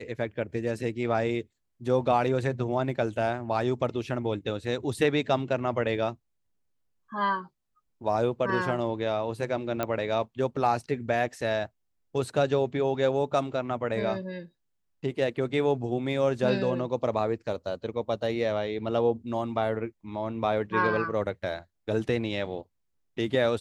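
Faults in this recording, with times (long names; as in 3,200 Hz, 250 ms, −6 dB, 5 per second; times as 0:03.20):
0:09.83: click −14 dBFS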